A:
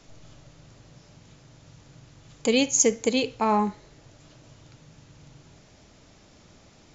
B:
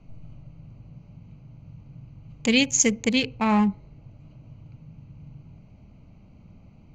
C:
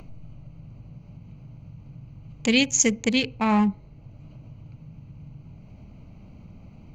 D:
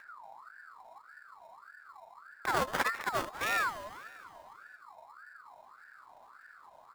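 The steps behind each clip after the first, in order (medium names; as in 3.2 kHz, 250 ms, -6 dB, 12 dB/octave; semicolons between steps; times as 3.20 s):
local Wiener filter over 25 samples; FFT filter 200 Hz 0 dB, 370 Hz -13 dB, 1.4 kHz -7 dB, 2.1 kHz +1 dB, 5.8 kHz -7 dB; trim +7.5 dB
upward compressor, threshold -38 dBFS
sample-rate reducer 3.1 kHz, jitter 0%; feedback delay 199 ms, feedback 58%, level -14 dB; ring modulator with a swept carrier 1.2 kHz, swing 35%, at 1.7 Hz; trim -8 dB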